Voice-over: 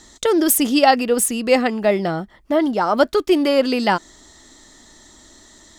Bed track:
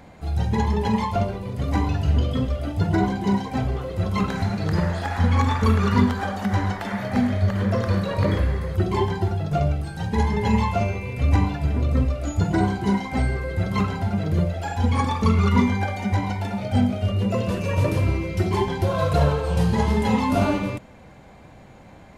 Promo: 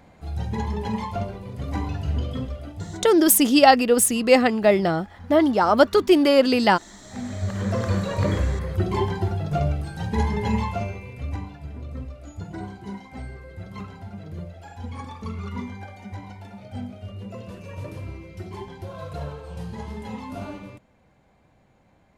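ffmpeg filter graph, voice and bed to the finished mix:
-filter_complex "[0:a]adelay=2800,volume=1[s0];[1:a]volume=5.96,afade=t=out:st=2.35:d=0.78:silence=0.141254,afade=t=in:st=7.03:d=0.8:silence=0.0891251,afade=t=out:st=10.21:d=1.22:silence=0.237137[s1];[s0][s1]amix=inputs=2:normalize=0"

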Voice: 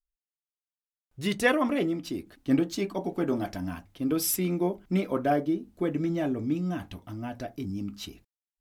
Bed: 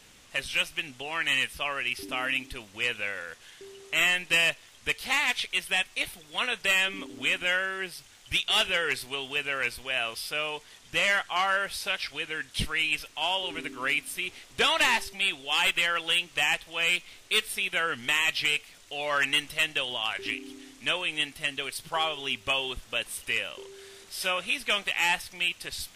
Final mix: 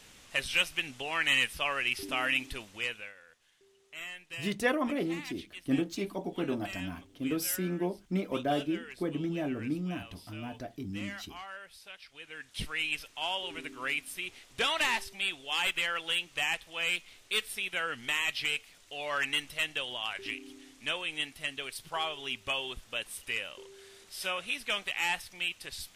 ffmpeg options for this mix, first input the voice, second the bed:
-filter_complex "[0:a]adelay=3200,volume=0.562[s0];[1:a]volume=4.22,afade=t=out:st=2.55:d=0.59:silence=0.125893,afade=t=in:st=12.08:d=0.73:silence=0.223872[s1];[s0][s1]amix=inputs=2:normalize=0"

